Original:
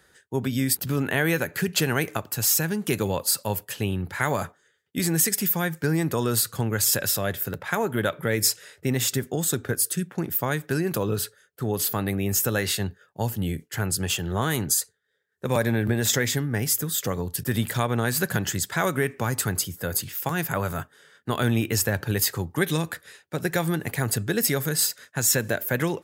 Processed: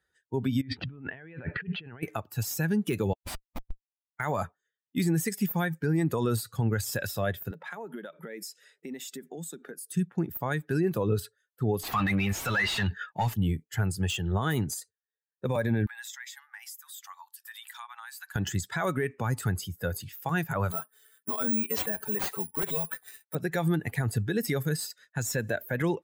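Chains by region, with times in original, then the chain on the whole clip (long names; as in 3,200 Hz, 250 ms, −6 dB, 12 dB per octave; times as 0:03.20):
0:00.61–0:02.03: low-pass filter 3,200 Hz 24 dB per octave + low-shelf EQ 70 Hz +7 dB + compressor whose output falls as the input rises −36 dBFS
0:03.13–0:04.20: first-order pre-emphasis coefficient 0.8 + comparator with hysteresis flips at −21 dBFS
0:07.51–0:09.92: elliptic high-pass filter 160 Hz + downward compressor 8 to 1, threshold −31 dBFS
0:11.83–0:13.34: parametric band 480 Hz −12.5 dB 2.3 octaves + mid-hump overdrive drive 35 dB, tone 1,900 Hz, clips at −10.5 dBFS + downward compressor 3 to 1, threshold −26 dBFS
0:15.86–0:18.36: Butterworth high-pass 830 Hz 48 dB per octave + downward compressor 4 to 1, threshold −35 dBFS
0:20.71–0:23.35: high-pass filter 320 Hz 6 dB per octave + comb filter 4.6 ms, depth 79% + bad sample-rate conversion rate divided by 4×, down none, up zero stuff
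whole clip: spectral dynamics exaggerated over time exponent 1.5; de-essing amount 75%; brickwall limiter −22 dBFS; level +4 dB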